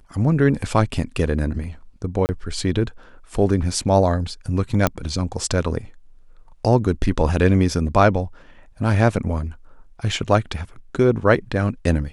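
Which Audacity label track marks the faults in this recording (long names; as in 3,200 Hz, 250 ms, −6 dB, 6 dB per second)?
2.260000	2.290000	drop-out 29 ms
4.870000	4.870000	click −3 dBFS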